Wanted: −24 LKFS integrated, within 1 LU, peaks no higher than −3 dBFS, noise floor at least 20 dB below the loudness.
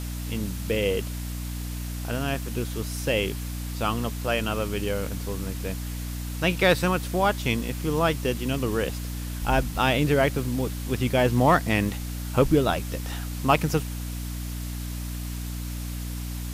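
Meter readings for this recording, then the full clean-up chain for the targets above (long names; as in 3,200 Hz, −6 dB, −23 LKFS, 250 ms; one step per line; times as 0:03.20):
mains hum 60 Hz; hum harmonics up to 300 Hz; level of the hum −30 dBFS; background noise floor −33 dBFS; target noise floor −47 dBFS; integrated loudness −26.5 LKFS; sample peak −7.5 dBFS; target loudness −24.0 LKFS
→ mains-hum notches 60/120/180/240/300 Hz
broadband denoise 14 dB, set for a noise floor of −33 dBFS
level +2.5 dB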